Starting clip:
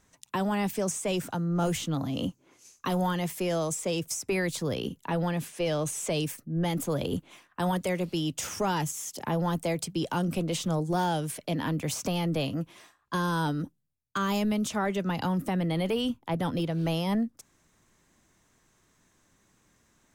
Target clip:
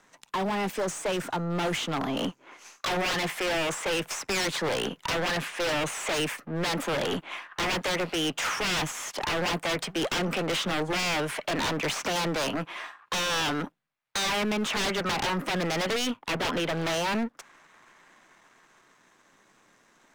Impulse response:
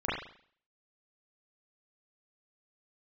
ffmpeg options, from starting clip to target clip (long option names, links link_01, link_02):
-filter_complex "[0:a]aeval=exprs='if(lt(val(0),0),0.447*val(0),val(0))':channel_layout=same,asplit=2[link_01][link_02];[link_02]highpass=frequency=720:poles=1,volume=18dB,asoftclip=type=tanh:threshold=-19dB[link_03];[link_01][link_03]amix=inputs=2:normalize=0,lowpass=frequency=2000:poles=1,volume=-6dB,acrossover=split=130|760|3200[link_04][link_05][link_06][link_07];[link_06]dynaudnorm=framelen=210:gausssize=21:maxgain=10dB[link_08];[link_04][link_05][link_08][link_07]amix=inputs=4:normalize=0,equalizer=frequency=66:width_type=o:width=0.86:gain=-13.5,aeval=exprs='0.0631*(abs(mod(val(0)/0.0631+3,4)-2)-1)':channel_layout=same,volume=1.5dB"